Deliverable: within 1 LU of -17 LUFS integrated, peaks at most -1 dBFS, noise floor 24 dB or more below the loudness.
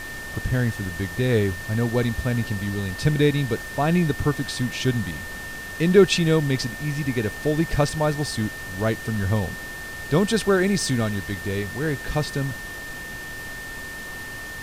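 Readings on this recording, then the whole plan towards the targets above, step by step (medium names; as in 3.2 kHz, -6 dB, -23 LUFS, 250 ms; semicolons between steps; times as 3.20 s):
steady tone 1.8 kHz; tone level -34 dBFS; noise floor -35 dBFS; noise floor target -48 dBFS; loudness -24.0 LUFS; peak level -3.5 dBFS; loudness target -17.0 LUFS
-> band-stop 1.8 kHz, Q 30; noise print and reduce 13 dB; trim +7 dB; peak limiter -1 dBFS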